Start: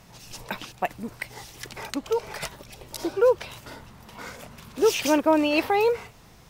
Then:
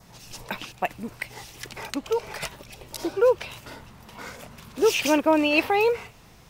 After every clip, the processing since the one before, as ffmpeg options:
-af "adynamicequalizer=threshold=0.00631:dfrequency=2600:dqfactor=3.1:tfrequency=2600:tqfactor=3.1:attack=5:release=100:ratio=0.375:range=2.5:mode=boostabove:tftype=bell"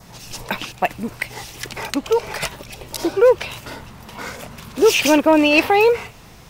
-af "asoftclip=type=tanh:threshold=-11.5dB,volume=8dB"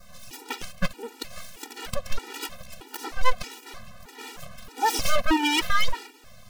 -af "aeval=exprs='abs(val(0))':c=same,afftfilt=real='re*gt(sin(2*PI*1.6*pts/sr)*(1-2*mod(floor(b*sr/1024/250),2)),0)':imag='im*gt(sin(2*PI*1.6*pts/sr)*(1-2*mod(floor(b*sr/1024/250),2)),0)':win_size=1024:overlap=0.75,volume=-2dB"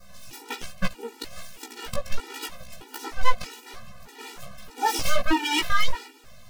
-af "flanger=delay=15:depth=2.6:speed=1.3,volume=2.5dB"

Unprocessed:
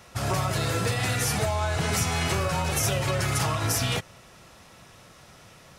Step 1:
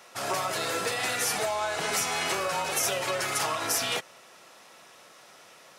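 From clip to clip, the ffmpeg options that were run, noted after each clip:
-af "highpass=380"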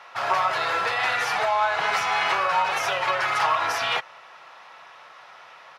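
-af "firequalizer=gain_entry='entry(130,0);entry(220,-7);entry(880,12);entry(4400,1);entry(8000,-14)':delay=0.05:min_phase=1,volume=-1.5dB"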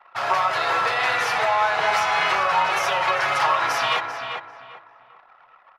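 -filter_complex "[0:a]anlmdn=0.158,asplit=2[a][b];[b]adelay=394,lowpass=f=2.4k:p=1,volume=-5.5dB,asplit=2[c][d];[d]adelay=394,lowpass=f=2.4k:p=1,volume=0.29,asplit=2[e][f];[f]adelay=394,lowpass=f=2.4k:p=1,volume=0.29,asplit=2[g][h];[h]adelay=394,lowpass=f=2.4k:p=1,volume=0.29[i];[a][c][e][g][i]amix=inputs=5:normalize=0,volume=1.5dB"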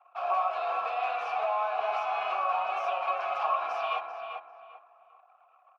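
-filter_complex "[0:a]asplit=3[a][b][c];[a]bandpass=f=730:t=q:w=8,volume=0dB[d];[b]bandpass=f=1.09k:t=q:w=8,volume=-6dB[e];[c]bandpass=f=2.44k:t=q:w=8,volume=-9dB[f];[d][e][f]amix=inputs=3:normalize=0"

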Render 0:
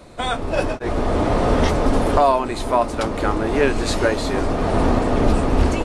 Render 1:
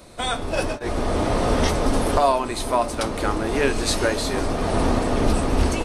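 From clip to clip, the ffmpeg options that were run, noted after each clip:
-af "highshelf=f=4.3k:g=11,bandreject=f=7.1k:w=11,bandreject=f=146.3:t=h:w=4,bandreject=f=292.6:t=h:w=4,bandreject=f=438.9:t=h:w=4,bandreject=f=585.2:t=h:w=4,bandreject=f=731.5:t=h:w=4,bandreject=f=877.8:t=h:w=4,bandreject=f=1.0241k:t=h:w=4,bandreject=f=1.1704k:t=h:w=4,bandreject=f=1.3167k:t=h:w=4,bandreject=f=1.463k:t=h:w=4,bandreject=f=1.6093k:t=h:w=4,bandreject=f=1.7556k:t=h:w=4,bandreject=f=1.9019k:t=h:w=4,bandreject=f=2.0482k:t=h:w=4,bandreject=f=2.1945k:t=h:w=4,bandreject=f=2.3408k:t=h:w=4,bandreject=f=2.4871k:t=h:w=4,bandreject=f=2.6334k:t=h:w=4,bandreject=f=2.7797k:t=h:w=4,bandreject=f=2.926k:t=h:w=4,bandreject=f=3.0723k:t=h:w=4,bandreject=f=3.2186k:t=h:w=4,bandreject=f=3.3649k:t=h:w=4,bandreject=f=3.5112k:t=h:w=4,bandreject=f=3.6575k:t=h:w=4,bandreject=f=3.8038k:t=h:w=4,bandreject=f=3.9501k:t=h:w=4,bandreject=f=4.0964k:t=h:w=4,bandreject=f=4.2427k:t=h:w=4,bandreject=f=4.389k:t=h:w=4,volume=-3dB"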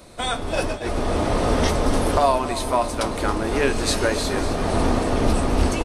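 -af "aecho=1:1:274|548|822|1096|1370|1644:0.224|0.128|0.0727|0.0415|0.0236|0.0135"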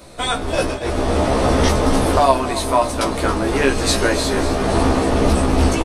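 -filter_complex "[0:a]asplit=2[a][b];[b]adelay=15,volume=-2.5dB[c];[a][c]amix=inputs=2:normalize=0,volume=2.5dB"

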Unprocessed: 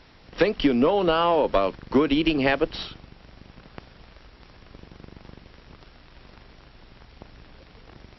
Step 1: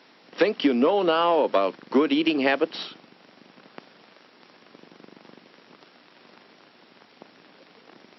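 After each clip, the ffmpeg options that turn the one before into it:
-af "highpass=f=210:w=0.5412,highpass=f=210:w=1.3066"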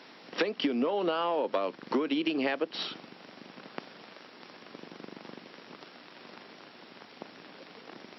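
-af "acompressor=threshold=-31dB:ratio=4,volume=3dB"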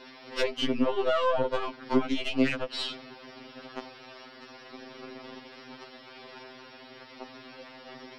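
-af "aeval=exprs='(tanh(14.1*val(0)+0.5)-tanh(0.5))/14.1':c=same,afftfilt=real='re*2.45*eq(mod(b,6),0)':imag='im*2.45*eq(mod(b,6),0)':win_size=2048:overlap=0.75,volume=7dB"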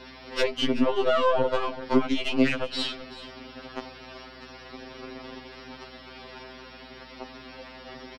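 -af "aeval=exprs='val(0)+0.00126*(sin(2*PI*60*n/s)+sin(2*PI*2*60*n/s)/2+sin(2*PI*3*60*n/s)/3+sin(2*PI*4*60*n/s)/4+sin(2*PI*5*60*n/s)/5)':c=same,aecho=1:1:379:0.168,volume=3dB"

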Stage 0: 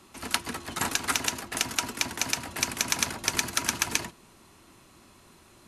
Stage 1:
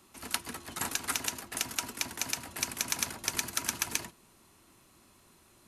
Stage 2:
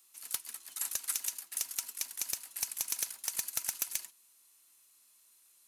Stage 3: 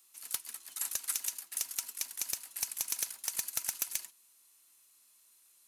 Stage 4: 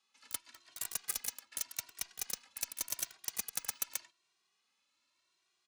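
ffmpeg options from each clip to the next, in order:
-af "highshelf=f=11k:g=11.5,volume=-7dB"
-af "acrusher=bits=7:mode=log:mix=0:aa=0.000001,aderivative,aeval=exprs='0.106*(abs(mod(val(0)/0.106+3,4)-2)-1)':c=same"
-af anull
-filter_complex "[0:a]acrossover=split=5400[a][b];[b]acrusher=bits=4:mix=0:aa=0.000001[c];[a][c]amix=inputs=2:normalize=0,asplit=2[d][e];[e]adelay=2,afreqshift=0.86[f];[d][f]amix=inputs=2:normalize=1"

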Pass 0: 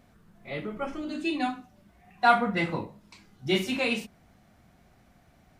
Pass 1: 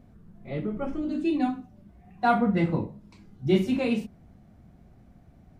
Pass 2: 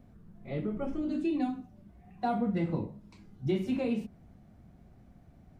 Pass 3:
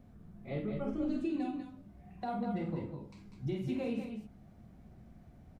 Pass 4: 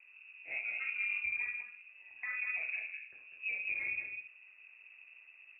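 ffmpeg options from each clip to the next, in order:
-af "tiltshelf=f=630:g=8.5"
-filter_complex "[0:a]acrossover=split=830|2500[a][b][c];[a]acompressor=threshold=-24dB:ratio=4[d];[b]acompressor=threshold=-47dB:ratio=4[e];[c]acompressor=threshold=-50dB:ratio=4[f];[d][e][f]amix=inputs=3:normalize=0,volume=-2.5dB"
-af "alimiter=level_in=3dB:limit=-24dB:level=0:latency=1:release=467,volume=-3dB,aecho=1:1:49|195|209:0.447|0.398|0.398,volume=-1.5dB"
-af "lowpass=f=2.3k:t=q:w=0.5098,lowpass=f=2.3k:t=q:w=0.6013,lowpass=f=2.3k:t=q:w=0.9,lowpass=f=2.3k:t=q:w=2.563,afreqshift=-2700,tremolo=f=200:d=0.519"

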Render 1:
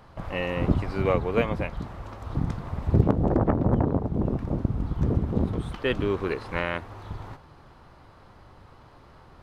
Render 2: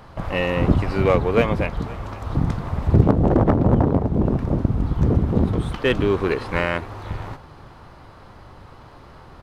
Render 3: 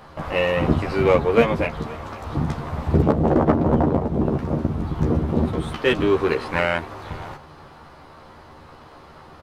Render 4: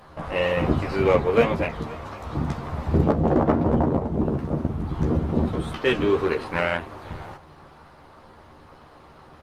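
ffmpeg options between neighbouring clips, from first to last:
-filter_complex "[0:a]asplit=2[a][b];[b]asoftclip=type=hard:threshold=-23.5dB,volume=-7dB[c];[a][c]amix=inputs=2:normalize=0,aecho=1:1:517:0.0891,volume=4dB"
-filter_complex "[0:a]lowshelf=f=120:g=-10,asplit=2[a][b];[b]adelay=13,volume=-3.5dB[c];[a][c]amix=inputs=2:normalize=0"
-af "flanger=delay=9.3:depth=8.9:regen=-70:speed=1.9:shape=triangular,volume=2dB" -ar 48000 -c:a libopus -b:a 24k

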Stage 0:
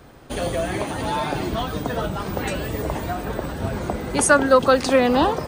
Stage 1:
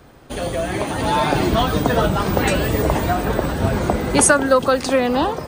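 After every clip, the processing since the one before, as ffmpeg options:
-filter_complex "[0:a]acrossover=split=7700[a][b];[a]alimiter=limit=-9dB:level=0:latency=1:release=402[c];[c][b]amix=inputs=2:normalize=0,dynaudnorm=f=230:g=9:m=11.5dB"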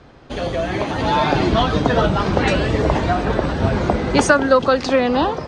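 -af "lowpass=f=5.8k:w=0.5412,lowpass=f=5.8k:w=1.3066,volume=1dB"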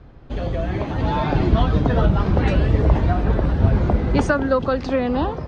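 -af "aemphasis=mode=reproduction:type=bsi,volume=-6.5dB"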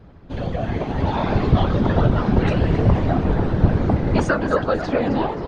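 -filter_complex "[0:a]afftfilt=real='hypot(re,im)*cos(2*PI*random(0))':imag='hypot(re,im)*sin(2*PI*random(1))':win_size=512:overlap=0.75,asplit=2[a][b];[b]asplit=4[c][d][e][f];[c]adelay=268,afreqshift=150,volume=-11dB[g];[d]adelay=536,afreqshift=300,volume=-19.2dB[h];[e]adelay=804,afreqshift=450,volume=-27.4dB[i];[f]adelay=1072,afreqshift=600,volume=-35.5dB[j];[g][h][i][j]amix=inputs=4:normalize=0[k];[a][k]amix=inputs=2:normalize=0,volume=5.5dB"

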